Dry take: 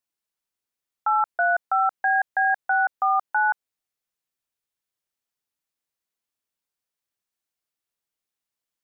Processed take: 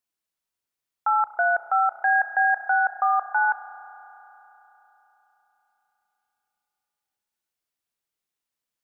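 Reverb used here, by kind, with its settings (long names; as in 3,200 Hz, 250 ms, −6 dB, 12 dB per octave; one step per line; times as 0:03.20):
spring reverb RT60 3.9 s, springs 32 ms, chirp 45 ms, DRR 8.5 dB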